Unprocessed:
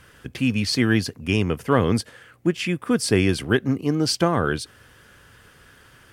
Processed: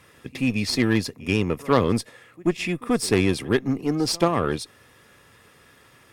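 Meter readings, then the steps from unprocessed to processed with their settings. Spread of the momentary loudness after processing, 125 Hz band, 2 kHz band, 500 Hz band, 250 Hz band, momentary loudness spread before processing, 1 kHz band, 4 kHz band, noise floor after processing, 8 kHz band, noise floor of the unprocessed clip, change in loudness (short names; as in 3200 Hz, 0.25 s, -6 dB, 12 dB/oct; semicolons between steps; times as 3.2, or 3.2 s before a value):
7 LU, -3.0 dB, -2.5 dB, 0.0 dB, -1.0 dB, 6 LU, 0.0 dB, -2.0 dB, -55 dBFS, -1.0 dB, -53 dBFS, -1.5 dB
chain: notch comb 1500 Hz; pre-echo 84 ms -23 dB; added harmonics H 4 -18 dB, 6 -17 dB, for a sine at -5.5 dBFS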